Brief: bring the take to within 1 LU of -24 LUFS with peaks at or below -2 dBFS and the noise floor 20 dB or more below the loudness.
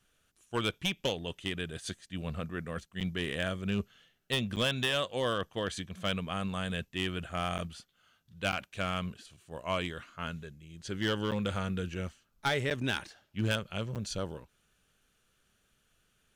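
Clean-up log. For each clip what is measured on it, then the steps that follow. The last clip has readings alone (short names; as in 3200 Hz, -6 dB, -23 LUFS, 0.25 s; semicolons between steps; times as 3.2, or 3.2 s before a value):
clipped 0.5%; flat tops at -23.0 dBFS; dropouts 7; longest dropout 8.0 ms; loudness -34.5 LUFS; peak -23.0 dBFS; loudness target -24.0 LUFS
-> clip repair -23 dBFS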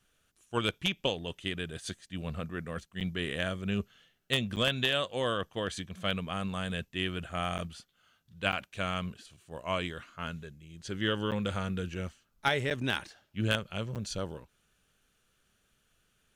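clipped 0.0%; dropouts 7; longest dropout 8.0 ms
-> interpolate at 3/4.56/7.58/8.52/11.31/12.7/13.95, 8 ms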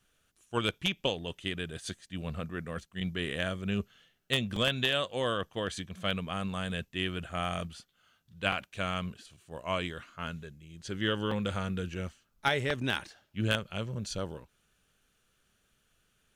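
dropouts 0; loudness -33.5 LUFS; peak -14.0 dBFS; loudness target -24.0 LUFS
-> gain +9.5 dB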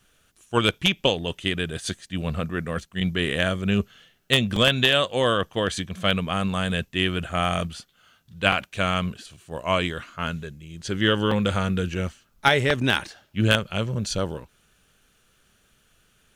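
loudness -24.0 LUFS; peak -4.5 dBFS; noise floor -64 dBFS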